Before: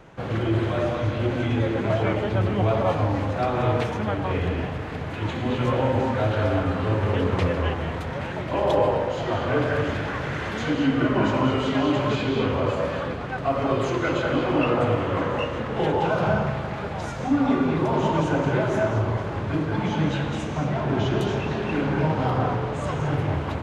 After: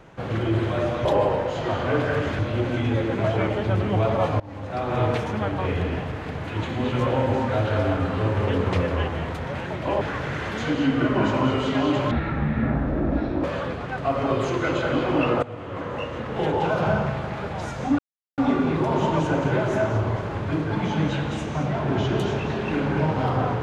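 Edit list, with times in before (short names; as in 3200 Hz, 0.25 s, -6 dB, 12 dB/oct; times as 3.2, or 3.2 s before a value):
3.06–3.68 fade in, from -23 dB
8.67–10.01 move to 1.05
12.11–12.84 speed 55%
14.83–16.32 fade in equal-power, from -18 dB
17.39 insert silence 0.39 s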